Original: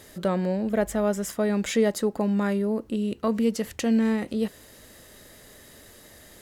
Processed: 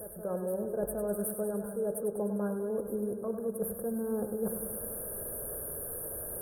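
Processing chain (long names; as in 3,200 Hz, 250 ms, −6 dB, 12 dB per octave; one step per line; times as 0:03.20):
drawn EQ curve 140 Hz 0 dB, 290 Hz −7 dB, 460 Hz +7 dB, 840 Hz −4 dB, 5,300 Hz −14 dB, 11,000 Hz −1 dB
reversed playback
downward compressor 10 to 1, threshold −38 dBFS, peak gain reduction 24 dB
reversed playback
linear-phase brick-wall band-stop 1,700–8,500 Hz
high-shelf EQ 3,500 Hz +11 dB
hum removal 95.65 Hz, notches 35
on a send: backwards echo 766 ms −13 dB
on the sum: feedback echo with a swinging delay time 100 ms, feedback 71%, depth 51 cents, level −9 dB
level +6.5 dB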